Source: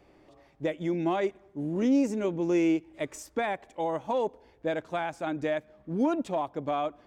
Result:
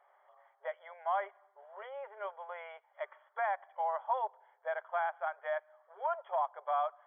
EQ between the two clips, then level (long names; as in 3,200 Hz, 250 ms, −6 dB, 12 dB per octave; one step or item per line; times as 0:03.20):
linear-phase brick-wall band-pass 410–3,400 Hz
phaser with its sweep stopped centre 1,100 Hz, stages 4
+1.5 dB